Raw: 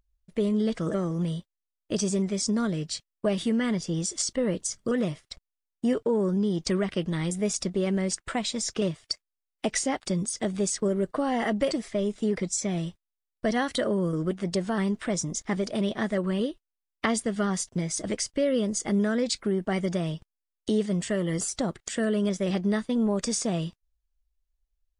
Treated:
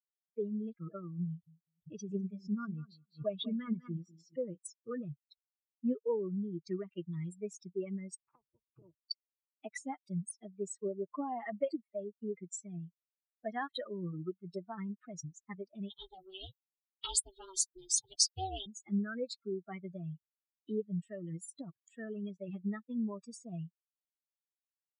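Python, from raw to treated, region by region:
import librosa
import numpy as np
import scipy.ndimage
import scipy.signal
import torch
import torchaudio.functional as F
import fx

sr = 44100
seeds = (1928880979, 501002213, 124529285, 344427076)

y = fx.chain(x, sr, fx.air_absorb(metres=100.0),
    fx.echo_feedback(ms=199, feedback_pct=36, wet_db=-7.0),
    fx.pre_swell(db_per_s=110.0), at=(1.27, 4.38))
y = fx.spec_clip(y, sr, under_db=26, at=(8.17, 8.98), fade=0.02)
y = fx.env_lowpass_down(y, sr, base_hz=520.0, full_db=-27.5, at=(8.17, 8.98), fade=0.02)
y = fx.chain(y, sr, fx.high_shelf_res(hz=2700.0, db=11.0, q=3.0),
    fx.ring_mod(carrier_hz=190.0), at=(15.9, 18.66))
y = fx.bin_expand(y, sr, power=3.0)
y = scipy.signal.sosfilt(scipy.signal.butter(2, 69.0, 'highpass', fs=sr, output='sos'), y)
y = fx.peak_eq(y, sr, hz=2400.0, db=-12.0, octaves=0.33)
y = y * 10.0 ** (-3.5 / 20.0)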